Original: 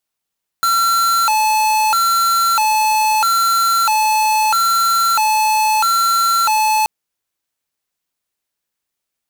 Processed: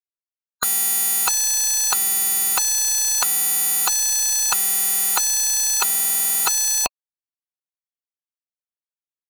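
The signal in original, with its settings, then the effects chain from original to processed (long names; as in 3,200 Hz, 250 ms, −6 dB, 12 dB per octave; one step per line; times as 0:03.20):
siren hi-lo 865–1,360 Hz 0.77 per second square −14.5 dBFS 6.23 s
gate on every frequency bin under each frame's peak −15 dB weak
parametric band 86 Hz −7.5 dB 1.7 octaves
leveller curve on the samples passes 3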